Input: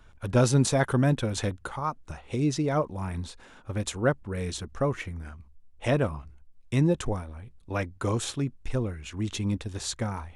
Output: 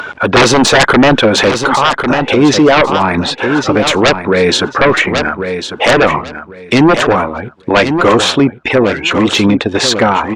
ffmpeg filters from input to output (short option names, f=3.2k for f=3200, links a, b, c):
-af "highpass=290,afftdn=nr=15:nf=-52,lowpass=3.5k,deesser=0.85,lowshelf=f=410:g=-2.5,acompressor=mode=upward:threshold=-39dB:ratio=2.5,aeval=exprs='0.282*sin(PI/2*5.62*val(0)/0.282)':c=same,aecho=1:1:1098|2196|3294:0.316|0.0632|0.0126,alimiter=level_in=13.5dB:limit=-1dB:release=50:level=0:latency=1,volume=-1.5dB" -ar 48000 -c:a libopus -b:a 256k